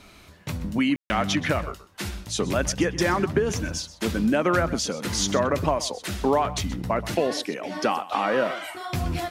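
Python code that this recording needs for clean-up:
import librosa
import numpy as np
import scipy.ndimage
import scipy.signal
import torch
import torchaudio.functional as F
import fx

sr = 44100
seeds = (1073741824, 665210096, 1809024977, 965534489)

y = fx.fix_ambience(x, sr, seeds[0], print_start_s=0.0, print_end_s=0.5, start_s=0.96, end_s=1.1)
y = fx.fix_echo_inverse(y, sr, delay_ms=127, level_db=-16.5)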